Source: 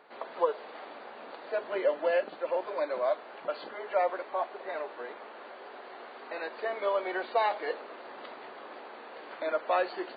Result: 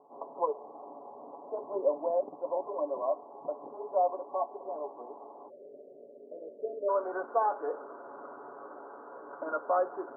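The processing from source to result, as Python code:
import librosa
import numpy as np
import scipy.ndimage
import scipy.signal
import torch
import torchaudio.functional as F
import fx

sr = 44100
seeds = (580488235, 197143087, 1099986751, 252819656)

y = fx.cheby_ripple(x, sr, hz=fx.steps((0.0, 1100.0), (5.48, 630.0), (6.88, 1500.0)), ripple_db=3)
y = y + 0.52 * np.pad(y, (int(7.1 * sr / 1000.0), 0))[:len(y)]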